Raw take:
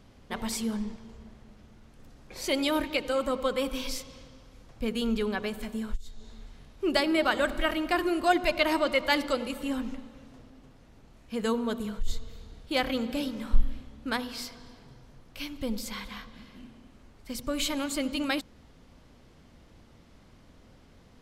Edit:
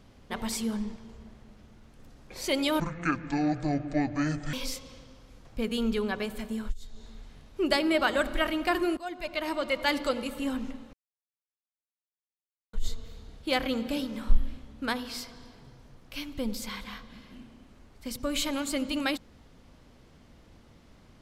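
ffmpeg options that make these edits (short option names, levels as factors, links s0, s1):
-filter_complex "[0:a]asplit=6[s0][s1][s2][s3][s4][s5];[s0]atrim=end=2.804[s6];[s1]atrim=start=2.8:end=3.77,asetpts=PTS-STARTPTS,asetrate=24696,aresample=44100[s7];[s2]atrim=start=3.766:end=8.21,asetpts=PTS-STARTPTS,afade=t=out:st=4.44:d=0.004:c=hsin:silence=0.11885[s8];[s3]atrim=start=8.21:end=10.17,asetpts=PTS-STARTPTS,afade=t=in:d=1.12:silence=0.11885,afade=t=out:st=1.956:d=0.004:c=hsin[s9];[s4]atrim=start=10.17:end=11.97,asetpts=PTS-STARTPTS,volume=0[s10];[s5]atrim=start=11.97,asetpts=PTS-STARTPTS,afade=t=in:d=0.004:c=hsin[s11];[s6][s7]acrossfade=d=0.004:c1=hsin:c2=hsin[s12];[s8][s9][s10][s11]concat=n=4:v=0:a=1[s13];[s12][s13]acrossfade=d=0.004:c1=hsin:c2=hsin"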